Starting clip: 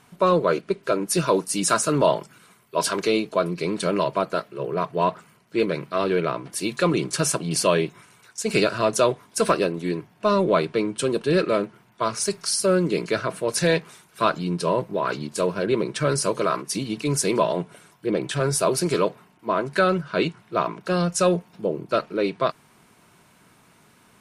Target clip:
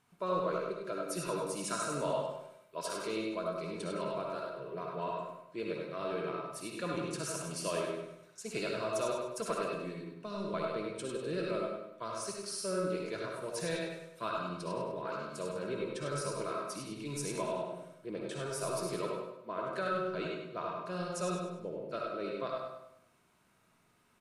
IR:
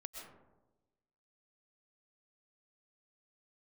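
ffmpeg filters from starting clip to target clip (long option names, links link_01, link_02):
-filter_complex "[0:a]asettb=1/sr,asplit=3[link_01][link_02][link_03];[link_01]atrim=end=9.664[link_04];[link_02]atrim=start=9.66:end=10.54,asetpts=PTS-STARTPTS,afade=type=in:duration=0.004:curve=qsin,afade=type=out:start_time=0.876:duration=0.004:curve=qsin,acrossover=split=280|3000[link_05][link_06][link_07];[link_06]acompressor=threshold=-25dB:ratio=6[link_08];[link_05][link_08][link_07]amix=inputs=3:normalize=0[link_09];[link_03]atrim=start=10.536[link_10];[link_04][link_09]acrossfade=duration=0.004:curve1=hsin:curve2=qsin[link_11];[link_11][link_10]acrossfade=duration=0.004:curve1=qsin:curve2=hsin,aecho=1:1:100|200|300|400|500:0.501|0.19|0.0724|0.0275|0.0105[link_12];[1:a]atrim=start_sample=2205,asetrate=88200,aresample=44100[link_13];[link_12][link_13]afir=irnorm=-1:irlink=0,volume=-5.5dB"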